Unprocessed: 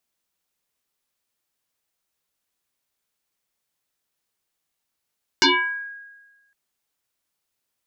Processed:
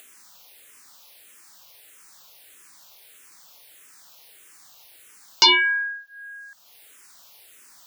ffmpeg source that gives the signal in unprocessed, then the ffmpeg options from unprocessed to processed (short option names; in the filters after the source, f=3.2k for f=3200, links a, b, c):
-f lavfi -i "aevalsrc='0.282*pow(10,-3*t/1.26)*sin(2*PI*1640*t+7.3*pow(10,-3*t/0.57)*sin(2*PI*0.39*1640*t))':d=1.11:s=44100"
-filter_complex "[0:a]asplit=2[a][b];[b]acompressor=mode=upward:threshold=-24dB:ratio=2.5,volume=1dB[c];[a][c]amix=inputs=2:normalize=0,lowshelf=f=360:g=-11,asplit=2[d][e];[e]afreqshift=-1.6[f];[d][f]amix=inputs=2:normalize=1"